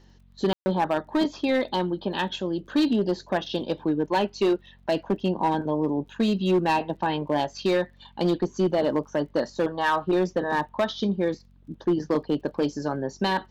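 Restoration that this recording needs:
clipped peaks rebuilt −16.5 dBFS
click removal
hum removal 46.1 Hz, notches 5
ambience match 0:00.53–0:00.66

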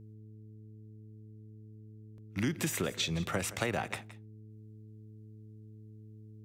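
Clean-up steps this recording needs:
hum removal 107.8 Hz, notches 4
repair the gap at 0:02.18/0:02.72/0:03.56, 1.6 ms
echo removal 170 ms −16.5 dB

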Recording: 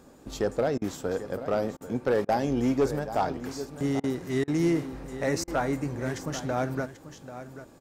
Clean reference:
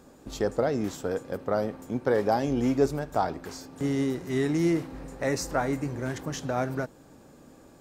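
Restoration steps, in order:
clipped peaks rebuilt −17.5 dBFS
repair the gap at 0:00.78/0:01.77/0:02.25/0:04.00/0:04.44/0:05.44, 36 ms
echo removal 788 ms −13 dB

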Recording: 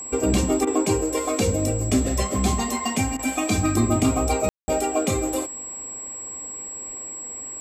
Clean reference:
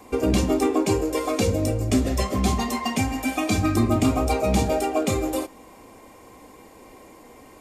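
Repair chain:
notch filter 7,700 Hz, Q 30
ambience match 0:04.49–0:04.68
repair the gap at 0:00.65/0:03.17, 20 ms

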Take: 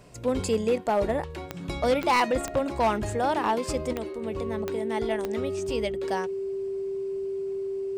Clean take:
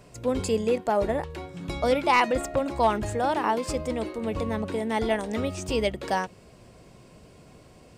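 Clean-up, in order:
clipped peaks rebuilt −17 dBFS
click removal
notch filter 390 Hz, Q 30
level correction +4.5 dB, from 0:03.93

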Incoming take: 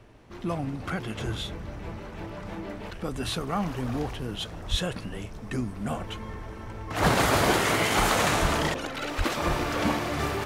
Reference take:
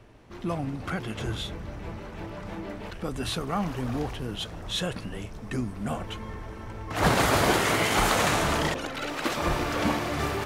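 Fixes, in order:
clipped peaks rebuilt −12.5 dBFS
0:04.70–0:04.82: high-pass filter 140 Hz 24 dB per octave
0:08.41–0:08.53: high-pass filter 140 Hz 24 dB per octave
0:09.17–0:09.29: high-pass filter 140 Hz 24 dB per octave

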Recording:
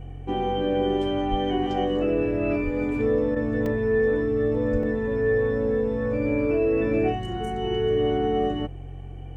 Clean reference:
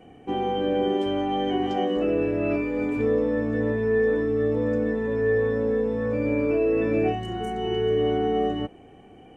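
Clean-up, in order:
hum removal 45.1 Hz, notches 3
0:01.30–0:01.42: high-pass filter 140 Hz 24 dB per octave
0:02.64–0:02.76: high-pass filter 140 Hz 24 dB per octave
0:04.72–0:04.84: high-pass filter 140 Hz 24 dB per octave
repair the gap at 0:03.66/0:04.83, 3 ms
repair the gap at 0:03.35, 11 ms

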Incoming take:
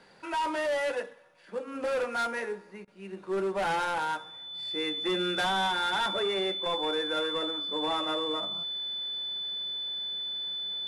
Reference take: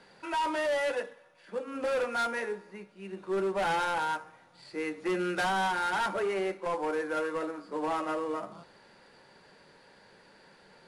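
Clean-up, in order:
notch filter 3,500 Hz, Q 30
repair the gap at 0:02.85, 24 ms

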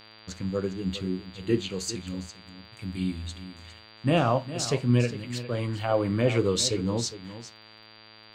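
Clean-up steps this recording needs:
click removal
hum removal 109 Hz, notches 39
notch filter 4,700 Hz, Q 30
echo removal 407 ms −13.5 dB

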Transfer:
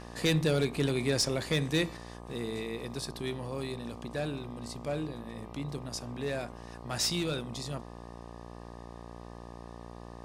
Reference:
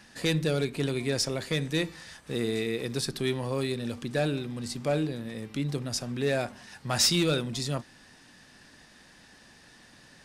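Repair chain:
clipped peaks rebuilt −19.5 dBFS
hum removal 58.6 Hz, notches 21
level 0 dB, from 0:01.97 +7 dB

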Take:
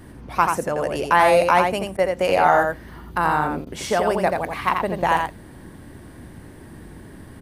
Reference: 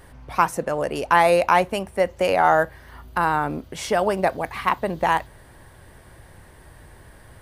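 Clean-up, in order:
repair the gap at 0:01.97/0:03.65, 14 ms
noise reduction from a noise print 6 dB
echo removal 85 ms −4.5 dB

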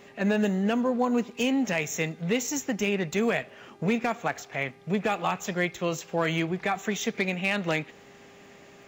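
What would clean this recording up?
clipped peaks rebuilt −16 dBFS
click removal
hum removal 401.2 Hz, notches 36

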